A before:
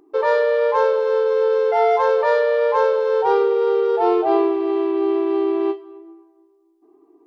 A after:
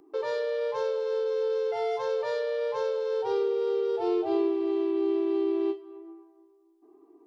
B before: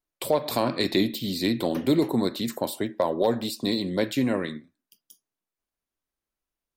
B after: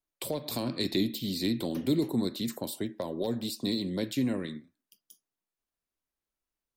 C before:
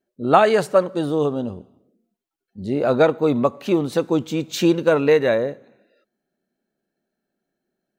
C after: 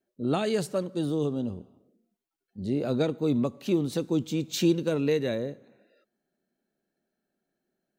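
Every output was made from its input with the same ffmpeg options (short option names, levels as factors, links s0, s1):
-filter_complex "[0:a]acrossover=split=370|3000[s0][s1][s2];[s1]acompressor=threshold=0.00631:ratio=2[s3];[s0][s3][s2]amix=inputs=3:normalize=0,volume=0.708"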